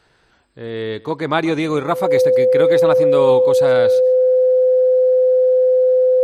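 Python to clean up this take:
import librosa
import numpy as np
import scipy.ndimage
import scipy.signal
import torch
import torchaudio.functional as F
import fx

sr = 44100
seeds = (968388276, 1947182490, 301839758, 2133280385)

y = fx.notch(x, sr, hz=510.0, q=30.0)
y = fx.fix_echo_inverse(y, sr, delay_ms=135, level_db=-21.0)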